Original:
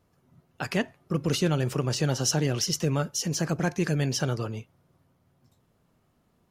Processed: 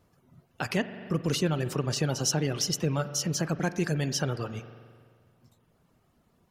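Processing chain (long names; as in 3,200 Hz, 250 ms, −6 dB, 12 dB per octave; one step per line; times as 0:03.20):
reverb reduction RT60 0.66 s
spring reverb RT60 1.8 s, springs 43 ms, chirp 75 ms, DRR 12.5 dB
in parallel at +0.5 dB: downward compressor, threshold −34 dBFS, peak gain reduction 14 dB
on the sum: level −3.5 dB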